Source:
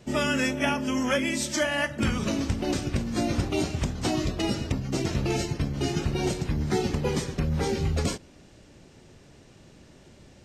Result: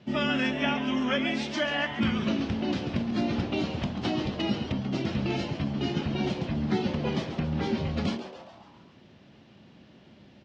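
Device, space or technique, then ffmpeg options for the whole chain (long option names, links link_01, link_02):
frequency-shifting delay pedal into a guitar cabinet: -filter_complex "[0:a]asplit=7[link_01][link_02][link_03][link_04][link_05][link_06][link_07];[link_02]adelay=138,afreqshift=150,volume=-11dB[link_08];[link_03]adelay=276,afreqshift=300,volume=-16.4dB[link_09];[link_04]adelay=414,afreqshift=450,volume=-21.7dB[link_10];[link_05]adelay=552,afreqshift=600,volume=-27.1dB[link_11];[link_06]adelay=690,afreqshift=750,volume=-32.4dB[link_12];[link_07]adelay=828,afreqshift=900,volume=-37.8dB[link_13];[link_01][link_08][link_09][link_10][link_11][link_12][link_13]amix=inputs=7:normalize=0,highpass=96,equalizer=frequency=210:width_type=q:width=4:gain=7,equalizer=frequency=450:width_type=q:width=4:gain=-5,equalizer=frequency=3100:width_type=q:width=4:gain=4,lowpass=frequency=4500:width=0.5412,lowpass=frequency=4500:width=1.3066,volume=-2.5dB"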